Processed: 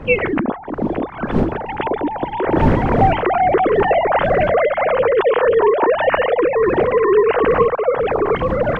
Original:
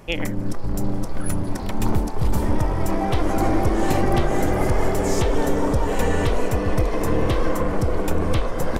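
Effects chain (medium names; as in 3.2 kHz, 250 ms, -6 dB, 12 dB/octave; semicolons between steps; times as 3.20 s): formants replaced by sine waves; wind noise 270 Hz -27 dBFS; trim +2 dB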